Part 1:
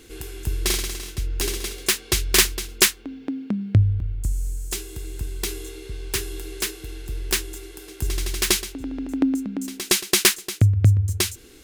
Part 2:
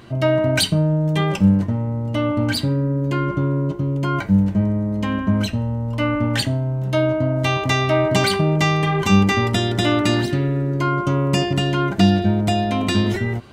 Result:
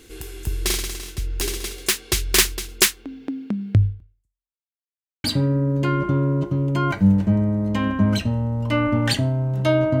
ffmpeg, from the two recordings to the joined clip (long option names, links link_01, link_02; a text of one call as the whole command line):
ffmpeg -i cue0.wav -i cue1.wav -filter_complex "[0:a]apad=whole_dur=10,atrim=end=10,asplit=2[link_01][link_02];[link_01]atrim=end=4.64,asetpts=PTS-STARTPTS,afade=type=out:start_time=3.85:duration=0.79:curve=exp[link_03];[link_02]atrim=start=4.64:end=5.24,asetpts=PTS-STARTPTS,volume=0[link_04];[1:a]atrim=start=2.52:end=7.28,asetpts=PTS-STARTPTS,afade=type=in:duration=0.004:curve=hsin[link_05];[link_03][link_04][link_05]concat=n=3:v=0:a=1" out.wav